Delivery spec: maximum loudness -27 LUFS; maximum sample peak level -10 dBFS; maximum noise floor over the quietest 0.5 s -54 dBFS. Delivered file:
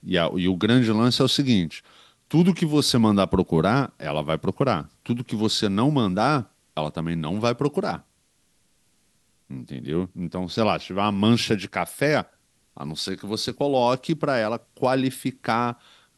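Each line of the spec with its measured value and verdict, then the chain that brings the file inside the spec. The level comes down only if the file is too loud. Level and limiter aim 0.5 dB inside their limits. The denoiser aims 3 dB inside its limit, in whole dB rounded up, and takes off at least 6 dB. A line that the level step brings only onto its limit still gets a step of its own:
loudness -23.0 LUFS: fail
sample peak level -5.5 dBFS: fail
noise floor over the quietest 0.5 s -66 dBFS: OK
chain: gain -4.5 dB; limiter -10.5 dBFS

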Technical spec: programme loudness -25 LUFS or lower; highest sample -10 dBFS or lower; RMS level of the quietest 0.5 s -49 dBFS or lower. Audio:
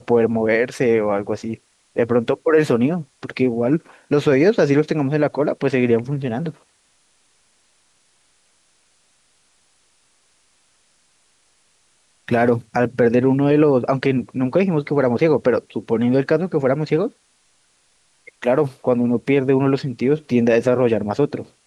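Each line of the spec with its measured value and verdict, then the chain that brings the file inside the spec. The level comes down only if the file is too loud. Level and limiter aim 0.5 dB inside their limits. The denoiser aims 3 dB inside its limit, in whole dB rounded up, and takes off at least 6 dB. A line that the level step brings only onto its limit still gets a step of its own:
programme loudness -19.0 LUFS: fail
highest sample -5.5 dBFS: fail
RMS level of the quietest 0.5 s -61 dBFS: OK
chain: gain -6.5 dB

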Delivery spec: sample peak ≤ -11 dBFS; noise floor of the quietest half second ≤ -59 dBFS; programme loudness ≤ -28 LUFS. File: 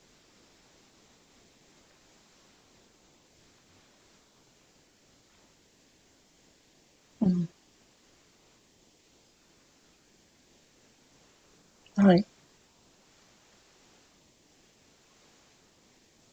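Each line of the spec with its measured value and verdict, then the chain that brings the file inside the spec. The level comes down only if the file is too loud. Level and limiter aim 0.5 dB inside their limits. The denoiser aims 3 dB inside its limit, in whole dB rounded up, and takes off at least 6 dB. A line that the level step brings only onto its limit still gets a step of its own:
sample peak -9.0 dBFS: fail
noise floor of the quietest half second -64 dBFS: OK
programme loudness -26.5 LUFS: fail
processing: gain -2 dB; limiter -11.5 dBFS

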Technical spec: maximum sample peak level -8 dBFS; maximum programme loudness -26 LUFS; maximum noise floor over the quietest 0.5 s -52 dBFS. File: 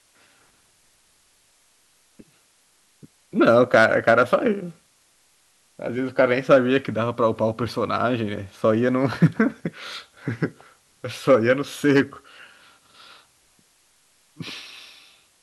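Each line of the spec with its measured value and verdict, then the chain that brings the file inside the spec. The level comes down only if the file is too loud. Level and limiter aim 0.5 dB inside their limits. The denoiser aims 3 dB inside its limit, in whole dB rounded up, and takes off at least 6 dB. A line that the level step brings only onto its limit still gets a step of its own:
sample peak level -4.5 dBFS: fail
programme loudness -21.0 LUFS: fail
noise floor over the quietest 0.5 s -61 dBFS: OK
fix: gain -5.5 dB

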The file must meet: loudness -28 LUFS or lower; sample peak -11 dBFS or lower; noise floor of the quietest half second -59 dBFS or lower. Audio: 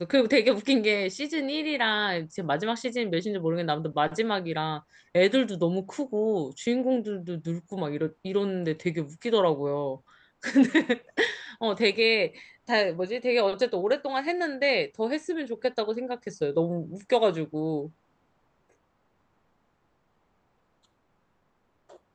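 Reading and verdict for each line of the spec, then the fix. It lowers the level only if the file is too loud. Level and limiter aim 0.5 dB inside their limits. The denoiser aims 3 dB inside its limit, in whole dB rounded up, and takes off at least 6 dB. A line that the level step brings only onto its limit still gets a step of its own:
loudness -27.0 LUFS: fail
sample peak -9.5 dBFS: fail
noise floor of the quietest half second -70 dBFS: OK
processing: gain -1.5 dB; limiter -11.5 dBFS

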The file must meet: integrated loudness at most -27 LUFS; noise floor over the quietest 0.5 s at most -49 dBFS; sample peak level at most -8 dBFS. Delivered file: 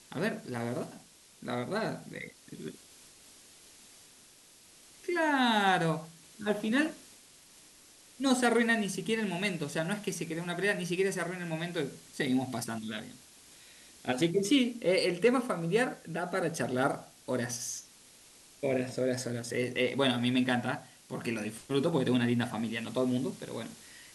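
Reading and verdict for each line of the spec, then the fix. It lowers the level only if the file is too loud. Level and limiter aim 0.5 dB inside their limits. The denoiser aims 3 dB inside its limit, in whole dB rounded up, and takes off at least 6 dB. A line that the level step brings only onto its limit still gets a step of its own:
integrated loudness -31.5 LUFS: OK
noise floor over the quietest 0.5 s -58 dBFS: OK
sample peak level -14.0 dBFS: OK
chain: none

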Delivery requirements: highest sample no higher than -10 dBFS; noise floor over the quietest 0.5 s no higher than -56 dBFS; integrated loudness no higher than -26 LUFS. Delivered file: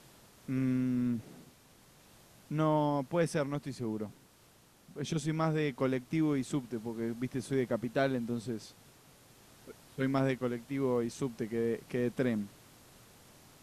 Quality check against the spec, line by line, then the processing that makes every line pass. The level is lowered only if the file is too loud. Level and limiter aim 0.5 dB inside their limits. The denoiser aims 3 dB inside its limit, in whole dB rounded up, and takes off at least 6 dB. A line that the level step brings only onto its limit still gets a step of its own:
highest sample -18.0 dBFS: OK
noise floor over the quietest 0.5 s -62 dBFS: OK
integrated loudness -33.5 LUFS: OK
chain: none

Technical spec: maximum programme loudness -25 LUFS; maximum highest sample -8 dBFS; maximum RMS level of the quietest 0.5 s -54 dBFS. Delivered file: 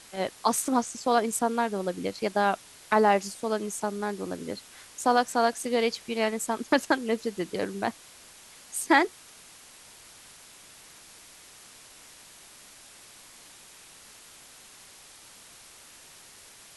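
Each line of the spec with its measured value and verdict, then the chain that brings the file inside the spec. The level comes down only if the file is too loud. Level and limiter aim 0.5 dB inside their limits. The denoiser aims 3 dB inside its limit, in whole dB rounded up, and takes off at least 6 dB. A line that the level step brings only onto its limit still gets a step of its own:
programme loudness -27.5 LUFS: OK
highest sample -7.5 dBFS: fail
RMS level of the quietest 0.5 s -51 dBFS: fail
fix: denoiser 6 dB, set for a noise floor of -51 dBFS; limiter -8.5 dBFS

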